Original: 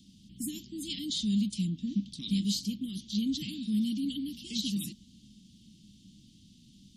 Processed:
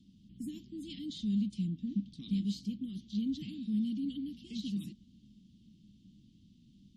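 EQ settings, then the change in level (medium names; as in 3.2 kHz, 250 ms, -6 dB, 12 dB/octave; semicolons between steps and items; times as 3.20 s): low-pass 1.3 kHz 6 dB/octave; -3.0 dB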